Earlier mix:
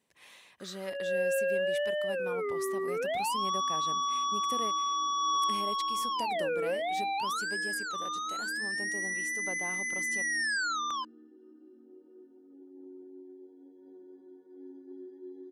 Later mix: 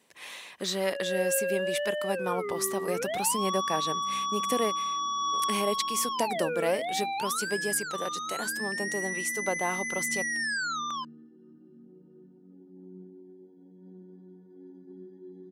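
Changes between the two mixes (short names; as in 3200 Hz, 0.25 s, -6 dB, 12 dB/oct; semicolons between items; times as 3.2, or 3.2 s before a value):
speech +12.0 dB; second sound: remove steep high-pass 260 Hz 72 dB/oct; master: add HPF 230 Hz 6 dB/oct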